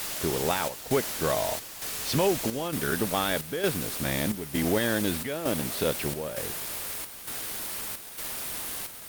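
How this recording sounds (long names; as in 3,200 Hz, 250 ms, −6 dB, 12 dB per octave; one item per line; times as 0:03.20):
a quantiser's noise floor 6 bits, dither triangular
chopped level 1.1 Hz, depth 60%, duty 75%
Opus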